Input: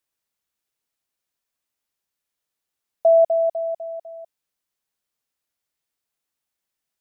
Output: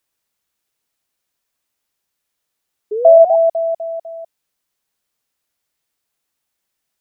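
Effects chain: painted sound rise, 2.91–3.36 s, 410–830 Hz -27 dBFS; trim +7 dB

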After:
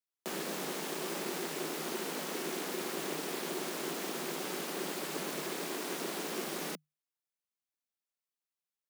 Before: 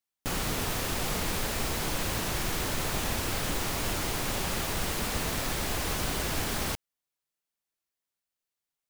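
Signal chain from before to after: ring modulator 220 Hz; frequency shift +150 Hz; trim -4.5 dB

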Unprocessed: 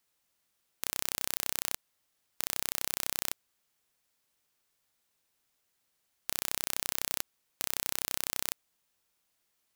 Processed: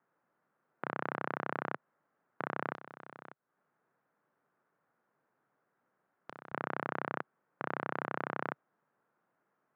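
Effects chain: elliptic band-pass 140–1500 Hz, stop band 60 dB; 2.72–6.52 s: compression 8:1, threshold -54 dBFS, peak gain reduction 15 dB; trim +9 dB

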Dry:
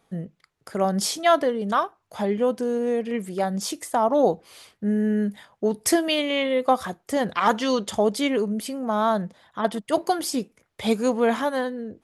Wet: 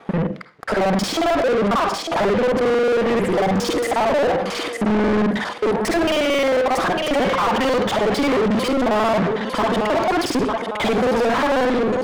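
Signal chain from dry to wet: time reversed locally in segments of 45 ms; gate -50 dBFS, range -7 dB; low-pass 2.4 kHz 6 dB/octave; in parallel at -1.5 dB: compression, threshold -32 dBFS, peak gain reduction 17 dB; on the sum: peak limiter -14.5 dBFS, peak gain reduction 7.5 dB; thinning echo 902 ms, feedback 26%, high-pass 420 Hz, level -13.5 dB; on a send at -16 dB: reverberation RT60 0.35 s, pre-delay 46 ms; on the sum: overdrive pedal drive 35 dB, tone 1.9 kHz, clips at -11.5 dBFS

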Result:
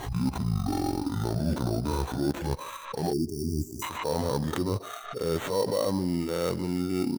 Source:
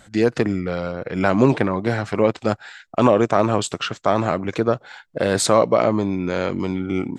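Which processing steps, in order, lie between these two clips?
pitch bend over the whole clip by -11 st ending unshifted; treble shelf 3.9 kHz -11.5 dB; harmonic-percussive split percussive -17 dB; tone controls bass -4 dB, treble +3 dB; reverse; compression 6:1, threshold -33 dBFS, peak gain reduction 17.5 dB; reverse; sample-rate reducer 5 kHz, jitter 0%; speakerphone echo 150 ms, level -19 dB; spectral selection erased 3.13–3.83 s, 410–4600 Hz; swell ahead of each attack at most 72 dB/s; trim +8 dB

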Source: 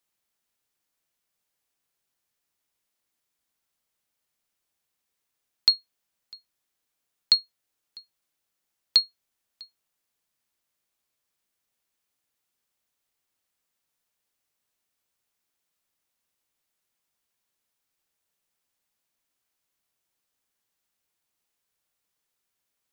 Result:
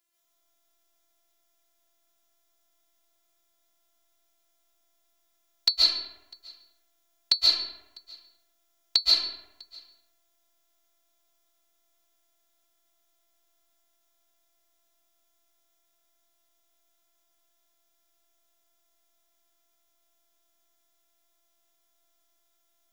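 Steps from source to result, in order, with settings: robot voice 341 Hz; reverberation RT60 0.95 s, pre-delay 100 ms, DRR -7 dB; trim +4 dB

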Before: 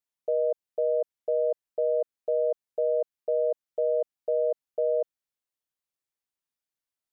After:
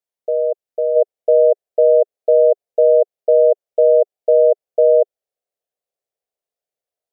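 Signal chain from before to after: high-order bell 550 Hz +9 dB 1.1 oct, from 0.95 s +15.5 dB; trim -1.5 dB

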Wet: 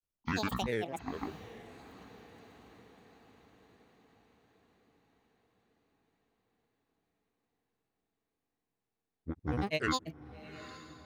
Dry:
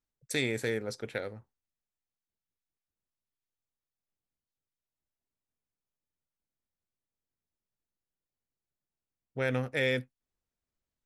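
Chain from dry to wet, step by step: granulator, pitch spread up and down by 12 st; echo that smears into a reverb 814 ms, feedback 56%, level -15.5 dB; trim -1.5 dB

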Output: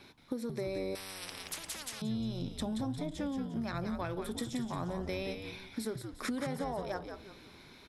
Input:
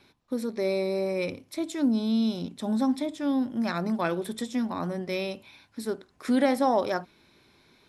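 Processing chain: compression 12:1, threshold -38 dBFS, peak gain reduction 20.5 dB; frequency-shifting echo 176 ms, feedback 38%, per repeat -99 Hz, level -6.5 dB; 0.95–2.02 s: spectrum-flattening compressor 10:1; trim +4 dB

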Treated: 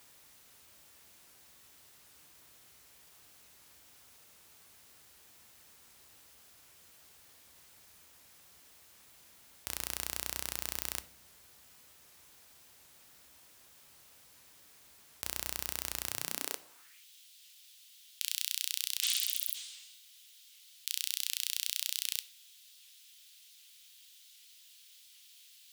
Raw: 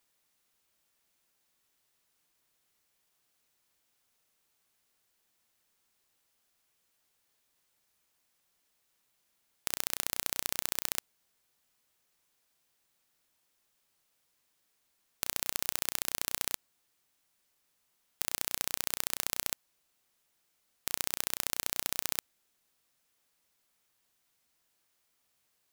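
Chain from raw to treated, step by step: spectral replace 19.06–19.98 s, 630–9700 Hz both; in parallel at +1.5 dB: compressor with a negative ratio -42 dBFS, ratio -0.5; on the sum: high-pass sweep 64 Hz -> 3.3 kHz, 16.04–17.06 s; peak limiter -12 dBFS, peak gain reduction 11 dB; on a send at -12 dB: reverberation RT60 0.65 s, pre-delay 7 ms; on the sum: warped record 78 rpm, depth 100 cents; trim +4.5 dB

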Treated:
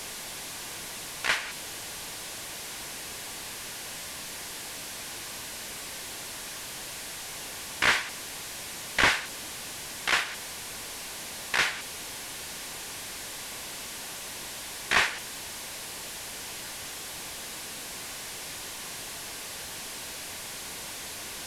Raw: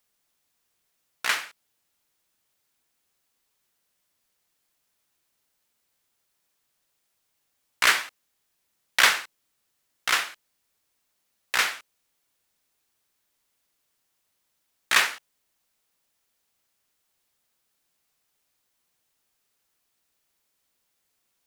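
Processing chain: one-bit delta coder 64 kbps, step -29.5 dBFS; treble shelf 6.1 kHz -4 dB; band-stop 1.3 kHz, Q 9.9

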